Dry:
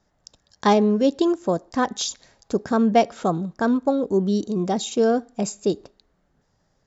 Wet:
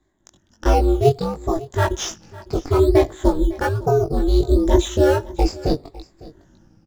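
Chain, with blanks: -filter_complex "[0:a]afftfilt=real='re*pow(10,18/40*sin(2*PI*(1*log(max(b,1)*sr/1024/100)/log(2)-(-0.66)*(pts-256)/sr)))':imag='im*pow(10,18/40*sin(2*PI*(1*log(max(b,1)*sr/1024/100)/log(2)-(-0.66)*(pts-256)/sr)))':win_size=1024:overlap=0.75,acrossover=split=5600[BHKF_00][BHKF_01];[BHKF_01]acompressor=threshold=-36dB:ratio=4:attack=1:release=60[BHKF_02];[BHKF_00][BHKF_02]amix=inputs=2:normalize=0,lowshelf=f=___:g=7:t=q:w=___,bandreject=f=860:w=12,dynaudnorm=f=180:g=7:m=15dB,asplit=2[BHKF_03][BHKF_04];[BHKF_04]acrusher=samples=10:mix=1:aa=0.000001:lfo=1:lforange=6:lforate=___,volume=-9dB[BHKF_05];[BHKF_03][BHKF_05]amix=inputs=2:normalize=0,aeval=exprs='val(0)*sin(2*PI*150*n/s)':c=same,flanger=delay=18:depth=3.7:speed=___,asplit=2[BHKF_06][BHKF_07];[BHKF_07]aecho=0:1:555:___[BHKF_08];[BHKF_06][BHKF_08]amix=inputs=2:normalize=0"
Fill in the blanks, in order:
260, 1.5, 1.2, 1.3, 0.1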